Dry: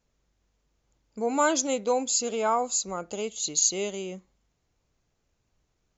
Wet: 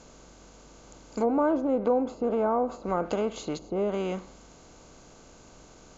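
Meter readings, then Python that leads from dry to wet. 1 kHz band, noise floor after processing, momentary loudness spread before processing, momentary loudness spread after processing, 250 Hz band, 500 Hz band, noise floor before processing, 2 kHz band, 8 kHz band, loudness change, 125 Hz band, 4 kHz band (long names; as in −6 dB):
−2.0 dB, −53 dBFS, 11 LU, 8 LU, +5.0 dB, +2.5 dB, −76 dBFS, −7.5 dB, can't be measured, −1.5 dB, +6.5 dB, −12.5 dB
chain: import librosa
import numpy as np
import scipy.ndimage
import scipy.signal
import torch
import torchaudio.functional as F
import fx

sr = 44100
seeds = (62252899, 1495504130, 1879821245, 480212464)

y = fx.bin_compress(x, sr, power=0.6)
y = fx.low_shelf(y, sr, hz=170.0, db=11.5)
y = fx.env_lowpass_down(y, sr, base_hz=700.0, full_db=-19.5)
y = fx.dynamic_eq(y, sr, hz=1600.0, q=0.76, threshold_db=-39.0, ratio=4.0, max_db=3)
y = F.gain(torch.from_numpy(y), -1.0).numpy()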